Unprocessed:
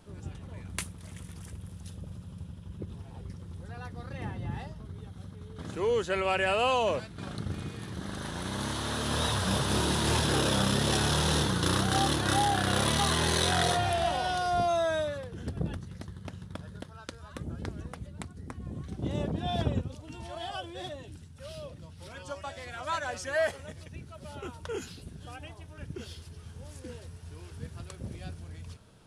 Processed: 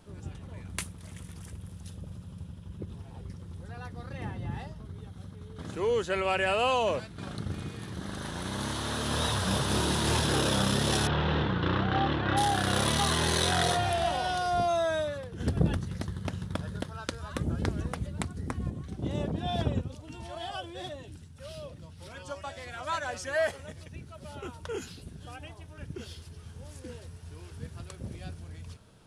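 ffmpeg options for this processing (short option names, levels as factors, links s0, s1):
-filter_complex "[0:a]asettb=1/sr,asplit=3[s0][s1][s2];[s0]atrim=end=11.074[s3];[s1]atrim=start=11.07:end=12.37,asetpts=PTS-STARTPTS,afade=t=in:d=0.004:c=qsin,afade=t=out:st=1.296:d=0.004:c=qsin,lowpass=f=3000:w=0.5412,lowpass=f=3000:w=1.3066[s4];[s2]atrim=start=12.366[s5];[s3][s4]acrossfade=d=0.004:c1=hsin:c2=qsin[s6];[s6][s5]acrossfade=d=0.004:c1=qsin:c2=hsin,asplit=3[s7][s8][s9];[s7]afade=t=out:st=15.39:d=0.02[s10];[s8]acontrast=86,afade=t=in:st=15.39:d=0.02,afade=t=out:st=18.69:d=0.02[s11];[s9]afade=t=in:st=18.69:d=0.02[s12];[s10][s11][s12]amix=inputs=3:normalize=0"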